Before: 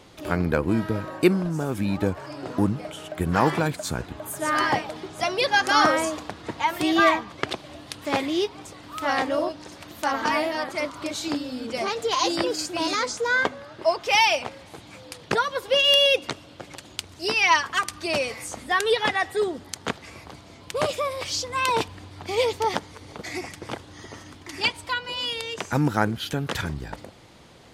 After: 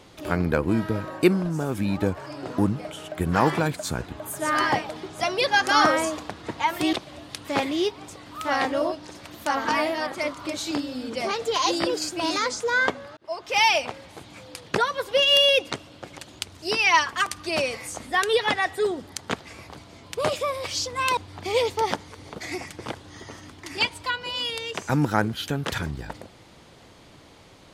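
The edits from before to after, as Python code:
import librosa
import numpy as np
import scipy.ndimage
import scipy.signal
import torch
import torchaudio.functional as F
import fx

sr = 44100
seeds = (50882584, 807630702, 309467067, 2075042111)

y = fx.edit(x, sr, fx.cut(start_s=6.93, length_s=0.57),
    fx.fade_in_span(start_s=13.74, length_s=0.49),
    fx.cut(start_s=21.74, length_s=0.26), tone=tone)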